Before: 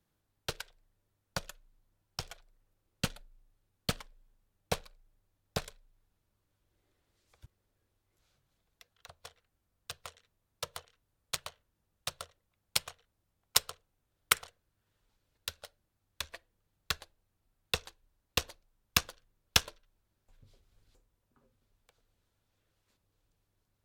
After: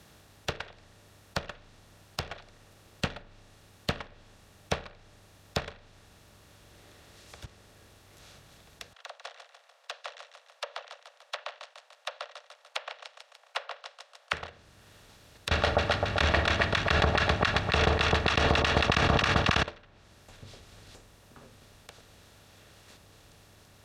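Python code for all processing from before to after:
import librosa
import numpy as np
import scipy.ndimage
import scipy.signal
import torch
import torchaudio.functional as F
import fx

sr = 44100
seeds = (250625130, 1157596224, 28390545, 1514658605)

y = fx.chain(x, sr, fx.steep_highpass(hz=520.0, slope=96),
    fx.spacing_loss(db_at_10k=21),
    fx.echo_feedback(ms=147, feedback_pct=38, wet_db=-14.0), at=(8.93, 14.33))
y = fx.chain(y, sr, fx.notch_comb(f0_hz=510.0),
    fx.echo_split(split_hz=1000.0, low_ms=130, high_ms=272, feedback_pct=52, wet_db=-6),
    fx.env_flatten(amount_pct=100), at=(15.51, 19.63))
y = fx.bin_compress(y, sr, power=0.6)
y = fx.env_lowpass_down(y, sr, base_hz=2600.0, full_db=-31.5)
y = scipy.signal.sosfilt(scipy.signal.butter(2, 44.0, 'highpass', fs=sr, output='sos'), y)
y = y * 10.0 ** (-1.5 / 20.0)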